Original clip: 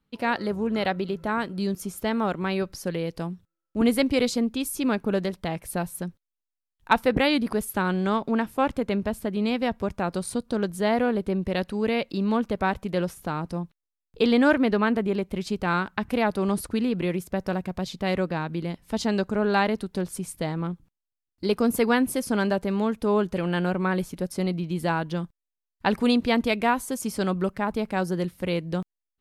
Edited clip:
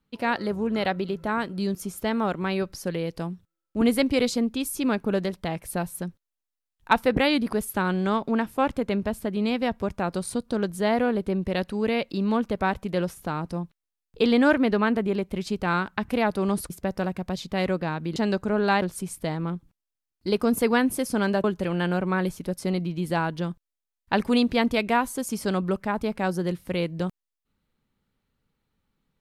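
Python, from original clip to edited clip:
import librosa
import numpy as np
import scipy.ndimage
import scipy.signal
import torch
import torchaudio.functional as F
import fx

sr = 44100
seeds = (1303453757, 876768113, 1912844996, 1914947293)

y = fx.edit(x, sr, fx.cut(start_s=16.7, length_s=0.49),
    fx.cut(start_s=18.65, length_s=0.37),
    fx.cut(start_s=19.68, length_s=0.31),
    fx.cut(start_s=22.61, length_s=0.56), tone=tone)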